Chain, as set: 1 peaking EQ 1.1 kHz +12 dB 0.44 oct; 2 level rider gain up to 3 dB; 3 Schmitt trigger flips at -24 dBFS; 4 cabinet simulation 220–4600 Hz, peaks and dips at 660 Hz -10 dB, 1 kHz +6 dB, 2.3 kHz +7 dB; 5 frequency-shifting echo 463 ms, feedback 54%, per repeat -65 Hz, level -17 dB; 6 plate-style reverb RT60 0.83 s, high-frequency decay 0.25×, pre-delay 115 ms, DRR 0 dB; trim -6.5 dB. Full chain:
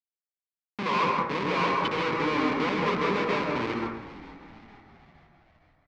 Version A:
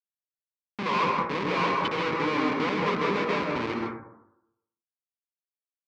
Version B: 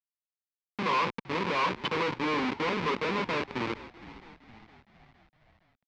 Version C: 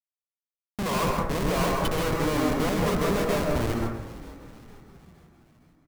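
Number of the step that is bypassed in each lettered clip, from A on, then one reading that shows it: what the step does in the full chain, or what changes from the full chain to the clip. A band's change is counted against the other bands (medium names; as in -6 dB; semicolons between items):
5, momentary loudness spread change -8 LU; 6, 4 kHz band +3.0 dB; 4, momentary loudness spread change -2 LU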